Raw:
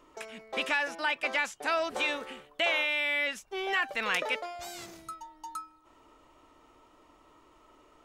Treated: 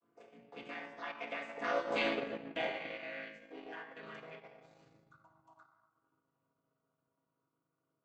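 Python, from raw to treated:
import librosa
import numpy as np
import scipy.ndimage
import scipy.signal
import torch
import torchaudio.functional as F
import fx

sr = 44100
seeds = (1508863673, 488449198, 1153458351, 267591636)

y = fx.chord_vocoder(x, sr, chord='major triad', root=45)
y = fx.doppler_pass(y, sr, speed_mps=9, closest_m=2.5, pass_at_s=2.08)
y = fx.transient(y, sr, attack_db=5, sustain_db=-3)
y = fx.room_shoebox(y, sr, seeds[0], volume_m3=1200.0, walls='mixed', distance_m=1.8)
y = fx.transient(y, sr, attack_db=-5, sustain_db=-9)
y = y * 10.0 ** (-3.5 / 20.0)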